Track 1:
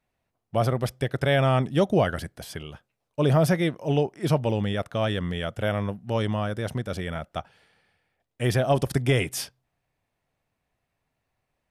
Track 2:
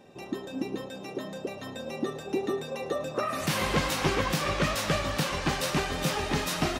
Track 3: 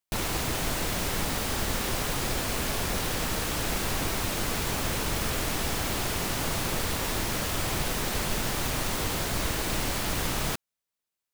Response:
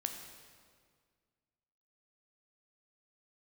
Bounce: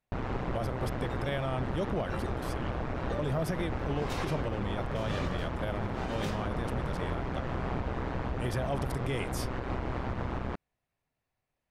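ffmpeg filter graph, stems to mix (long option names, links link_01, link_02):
-filter_complex "[0:a]volume=-7dB[link_01];[1:a]highshelf=frequency=7100:gain=-10.5,aeval=exprs='val(0)*pow(10,-32*(0.5-0.5*cos(2*PI*1*n/s))/20)':channel_layout=same,adelay=200,volume=-4dB[link_02];[2:a]lowpass=1300,aeval=exprs='val(0)*sin(2*PI*63*n/s)':channel_layout=same,volume=2.5dB[link_03];[link_01][link_02][link_03]amix=inputs=3:normalize=0,alimiter=limit=-22.5dB:level=0:latency=1:release=115"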